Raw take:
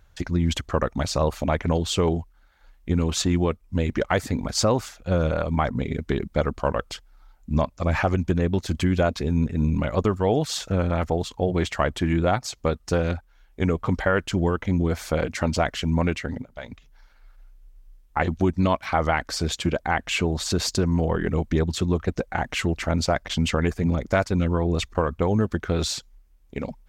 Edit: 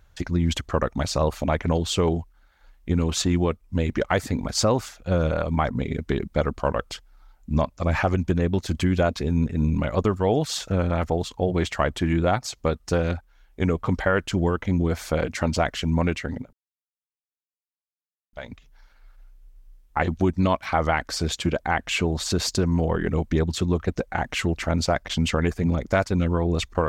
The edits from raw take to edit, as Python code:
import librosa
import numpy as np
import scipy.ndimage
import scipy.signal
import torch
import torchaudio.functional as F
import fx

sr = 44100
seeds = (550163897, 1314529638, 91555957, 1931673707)

y = fx.edit(x, sr, fx.insert_silence(at_s=16.53, length_s=1.8), tone=tone)